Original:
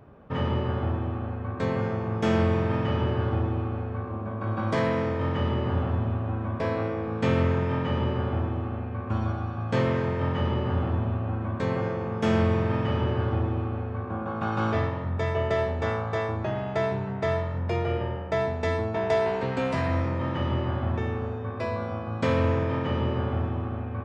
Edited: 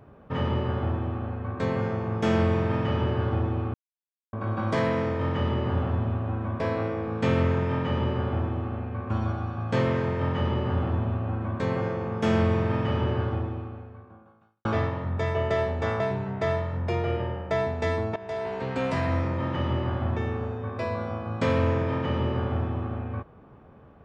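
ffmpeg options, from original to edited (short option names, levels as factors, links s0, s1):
-filter_complex "[0:a]asplit=6[s0][s1][s2][s3][s4][s5];[s0]atrim=end=3.74,asetpts=PTS-STARTPTS,afade=t=out:st=3.736:d=0.004:c=hsin[s6];[s1]atrim=start=3.74:end=4.33,asetpts=PTS-STARTPTS,volume=0[s7];[s2]atrim=start=4.33:end=14.65,asetpts=PTS-STARTPTS,afade=t=in:d=0.004:c=hsin,afade=t=out:st=8.83:d=1.49:c=qua[s8];[s3]atrim=start=14.65:end=16.002,asetpts=PTS-STARTPTS,afade=t=in:d=0.004:c=hsin[s9];[s4]atrim=start=16.808:end=18.97,asetpts=PTS-STARTPTS,afade=t=out:st=2.158:d=0.004:c=hsin:silence=0.149624[s10];[s5]atrim=start=18.97,asetpts=PTS-STARTPTS,afade=t=in:d=0.71:silence=0.149624[s11];[s6][s7][s8][s9]concat=n=4:v=0:a=1[s12];[s10][s11]concat=n=2:v=0:a=1[s13];[s12][s13]acrossfade=d=0.004:c1=hsin:c2=hsin"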